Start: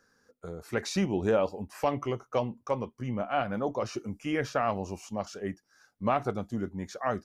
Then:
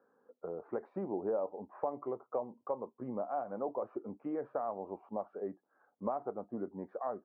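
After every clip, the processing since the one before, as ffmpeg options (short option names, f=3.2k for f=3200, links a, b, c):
-af "highpass=370,acompressor=threshold=-41dB:ratio=2.5,lowpass=f=1k:w=0.5412,lowpass=f=1k:w=1.3066,volume=4.5dB"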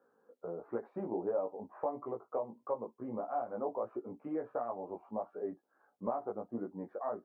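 -af "flanger=delay=16.5:depth=2.2:speed=1.5,volume=3dB"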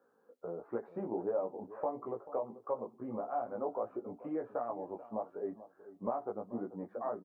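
-filter_complex "[0:a]asplit=2[a][b];[b]adelay=437,lowpass=f=1k:p=1,volume=-14.5dB,asplit=2[c][d];[d]adelay=437,lowpass=f=1k:p=1,volume=0.28,asplit=2[e][f];[f]adelay=437,lowpass=f=1k:p=1,volume=0.28[g];[a][c][e][g]amix=inputs=4:normalize=0"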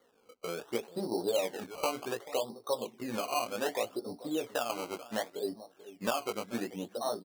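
-af "acrusher=samples=17:mix=1:aa=0.000001:lfo=1:lforange=17:lforate=0.67,volume=3.5dB"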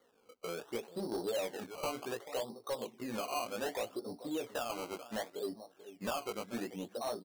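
-af "asoftclip=type=tanh:threshold=-28dB,volume=-2dB"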